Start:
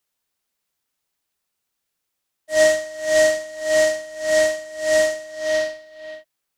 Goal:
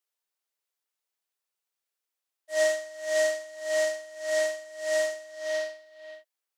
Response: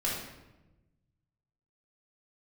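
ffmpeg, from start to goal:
-af "highpass=f=360:w=0.5412,highpass=f=360:w=1.3066,volume=-9dB"

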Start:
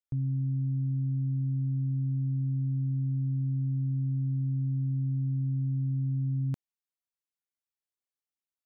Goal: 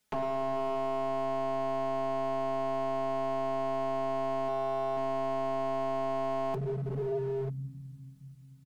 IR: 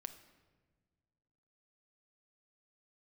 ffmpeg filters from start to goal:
-filter_complex "[0:a]asplit=2[a][b];[1:a]atrim=start_sample=2205,asetrate=23373,aresample=44100[c];[b][c]afir=irnorm=-1:irlink=0,volume=3.5dB[d];[a][d]amix=inputs=2:normalize=0,asettb=1/sr,asplit=3[e][f][g];[e]atrim=end=4.484[h];[f]atrim=start=4.48:end=4.97,asetpts=PTS-STARTPTS,afade=t=in:d=0.004:c=qsin,afade=t=out:st=0.486:d=0.004:c=qsin,aeval=exprs='0.15*(cos(1*acos(clip(val(0)/0.15,-1,1)))-cos(1*PI/2))+0.0106*(cos(4*acos(clip(val(0)/0.15,-1,1)))-cos(4*PI/2))':c=same[i];[g]atrim=start=4.966[j];[h][i]acrossfade=d=0.004:c1=hsin:c2=qsin[k];[k][j]acrossfade=d=0.004:c1=qsin:c2=hsin,bandreject=f=60:t=h:w=6,bandreject=f=120:t=h:w=6,bandreject=f=180:t=h:w=6,bandreject=f=240:t=h:w=6,bandreject=f=300:t=h:w=6,acompressor=threshold=-39dB:ratio=4,equalizer=f=140:t=o:w=1.7:g=9.5,aeval=exprs='0.015*(abs(mod(val(0)/0.015+3,4)-2)-1)':c=same,aecho=1:1:4.7:0.99,asoftclip=type=tanh:threshold=-32.5dB,volume=8dB"

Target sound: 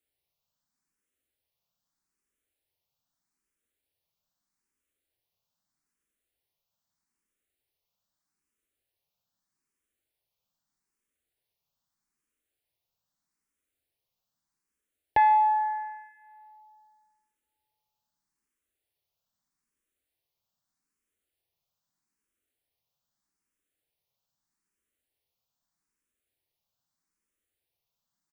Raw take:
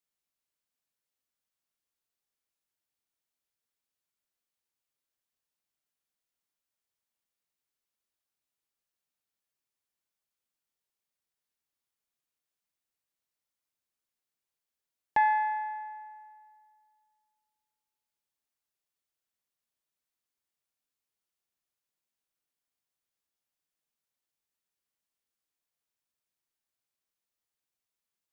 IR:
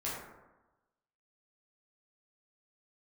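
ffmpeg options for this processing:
-filter_complex "[0:a]lowshelf=f=430:g=7,aecho=1:1:147:0.0708,asplit=2[a][b];[b]afreqshift=0.8[c];[a][c]amix=inputs=2:normalize=1,volume=5.5dB"

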